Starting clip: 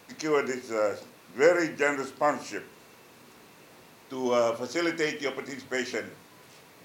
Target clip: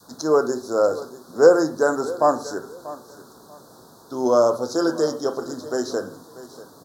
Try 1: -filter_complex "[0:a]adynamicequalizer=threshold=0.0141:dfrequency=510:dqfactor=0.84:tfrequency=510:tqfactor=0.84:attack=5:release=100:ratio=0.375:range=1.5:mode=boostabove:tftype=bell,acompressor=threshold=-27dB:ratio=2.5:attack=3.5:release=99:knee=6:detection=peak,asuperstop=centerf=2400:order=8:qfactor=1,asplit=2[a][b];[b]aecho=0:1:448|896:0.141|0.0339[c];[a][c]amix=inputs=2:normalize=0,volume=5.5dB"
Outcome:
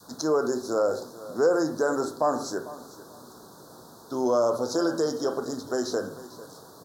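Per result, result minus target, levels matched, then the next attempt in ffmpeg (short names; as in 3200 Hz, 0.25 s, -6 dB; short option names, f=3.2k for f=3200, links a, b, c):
compressor: peak gain reduction +10 dB; echo 0.19 s early
-filter_complex "[0:a]adynamicequalizer=threshold=0.0141:dfrequency=510:dqfactor=0.84:tfrequency=510:tqfactor=0.84:attack=5:release=100:ratio=0.375:range=1.5:mode=boostabove:tftype=bell,asuperstop=centerf=2400:order=8:qfactor=1,asplit=2[a][b];[b]aecho=0:1:448|896:0.141|0.0339[c];[a][c]amix=inputs=2:normalize=0,volume=5.5dB"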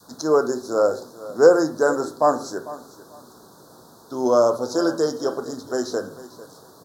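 echo 0.19 s early
-filter_complex "[0:a]adynamicequalizer=threshold=0.0141:dfrequency=510:dqfactor=0.84:tfrequency=510:tqfactor=0.84:attack=5:release=100:ratio=0.375:range=1.5:mode=boostabove:tftype=bell,asuperstop=centerf=2400:order=8:qfactor=1,asplit=2[a][b];[b]aecho=0:1:638|1276:0.141|0.0339[c];[a][c]amix=inputs=2:normalize=0,volume=5.5dB"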